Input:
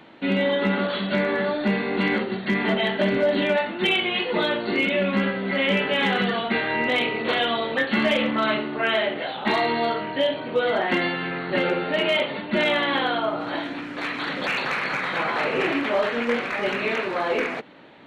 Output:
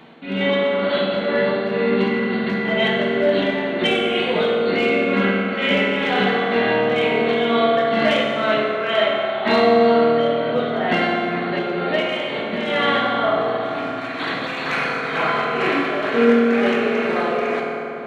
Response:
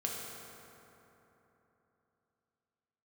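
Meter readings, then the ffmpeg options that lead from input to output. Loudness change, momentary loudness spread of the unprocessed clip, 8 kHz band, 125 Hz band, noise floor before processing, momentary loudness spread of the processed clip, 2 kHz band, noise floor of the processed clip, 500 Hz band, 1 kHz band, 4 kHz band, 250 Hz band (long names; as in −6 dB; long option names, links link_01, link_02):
+4.0 dB, 5 LU, can't be measured, +2.5 dB, −33 dBFS, 7 LU, +2.0 dB, −27 dBFS, +6.0 dB, +4.5 dB, +1.5 dB, +4.0 dB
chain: -filter_complex "[0:a]acontrast=71,tremolo=f=2.1:d=0.66[link_01];[1:a]atrim=start_sample=2205[link_02];[link_01][link_02]afir=irnorm=-1:irlink=0,volume=-3.5dB"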